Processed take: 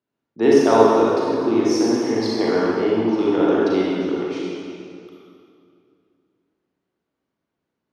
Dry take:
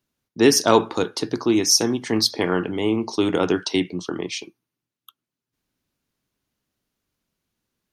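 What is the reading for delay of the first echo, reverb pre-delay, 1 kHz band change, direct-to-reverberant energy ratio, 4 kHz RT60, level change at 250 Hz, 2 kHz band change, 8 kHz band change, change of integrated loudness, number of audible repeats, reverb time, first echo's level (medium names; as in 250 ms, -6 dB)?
no echo, 33 ms, +4.0 dB, -6.0 dB, 2.0 s, +3.5 dB, -1.0 dB, -12.5 dB, +2.0 dB, no echo, 2.4 s, no echo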